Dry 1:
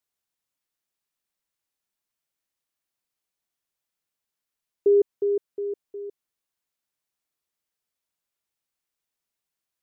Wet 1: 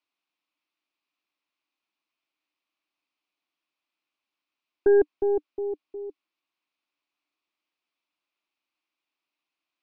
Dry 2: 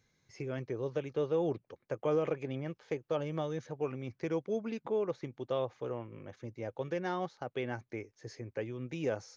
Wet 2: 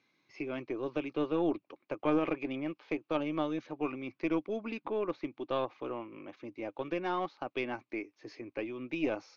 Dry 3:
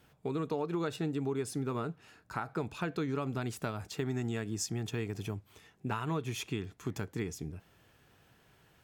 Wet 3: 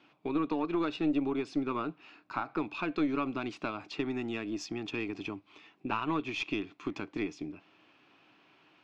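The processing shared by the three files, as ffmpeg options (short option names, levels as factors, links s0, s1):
-af "highpass=280,equalizer=f=300:t=q:w=4:g=10,equalizer=f=470:t=q:w=4:g=-7,equalizer=f=1100:t=q:w=4:g=5,equalizer=f=1700:t=q:w=4:g=-5,equalizer=f=2500:t=q:w=4:g=8,lowpass=f=4700:w=0.5412,lowpass=f=4700:w=1.3066,aeval=exprs='0.188*(cos(1*acos(clip(val(0)/0.188,-1,1)))-cos(1*PI/2))+0.0188*(cos(4*acos(clip(val(0)/0.188,-1,1)))-cos(4*PI/2))':c=same,volume=1.26"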